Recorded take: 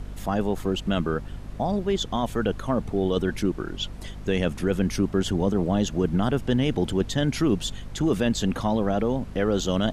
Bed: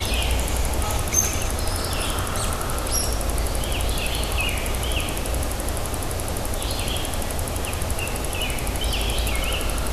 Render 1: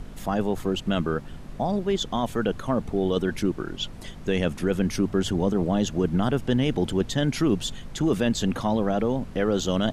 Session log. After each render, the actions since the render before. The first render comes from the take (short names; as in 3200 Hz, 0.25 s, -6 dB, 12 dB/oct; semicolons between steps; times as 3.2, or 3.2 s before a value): notches 50/100 Hz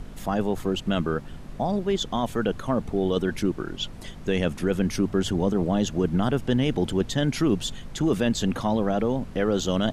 nothing audible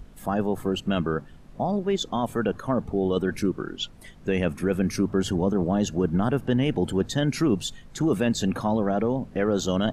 noise print and reduce 9 dB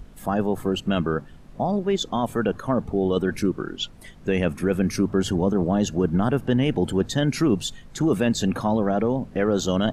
gain +2 dB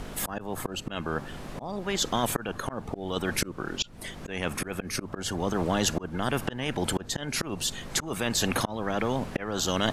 auto swell 0.534 s; spectral compressor 2:1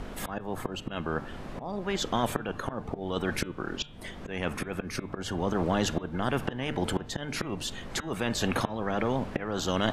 high shelf 4800 Hz -11.5 dB; de-hum 148.7 Hz, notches 26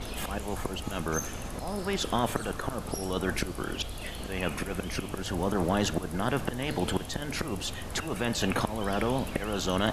add bed -16 dB